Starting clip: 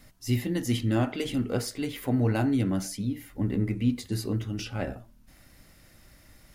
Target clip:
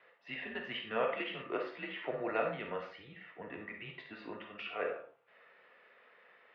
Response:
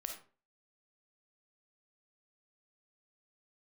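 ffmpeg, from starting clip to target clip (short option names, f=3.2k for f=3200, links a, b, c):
-filter_complex "[1:a]atrim=start_sample=2205[a];[0:a][a]afir=irnorm=-1:irlink=0,highpass=f=550:t=q:w=0.5412,highpass=f=550:t=q:w=1.307,lowpass=f=3k:t=q:w=0.5176,lowpass=f=3k:t=q:w=0.7071,lowpass=f=3k:t=q:w=1.932,afreqshift=-110,volume=2.5dB"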